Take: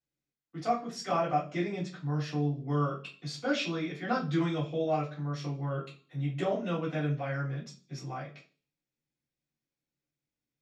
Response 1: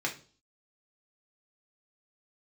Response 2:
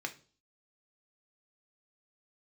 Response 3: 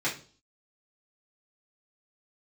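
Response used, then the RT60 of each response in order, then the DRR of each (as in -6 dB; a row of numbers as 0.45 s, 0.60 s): 3; 0.40 s, 0.40 s, 0.40 s; -1.0 dB, 4.5 dB, -8.0 dB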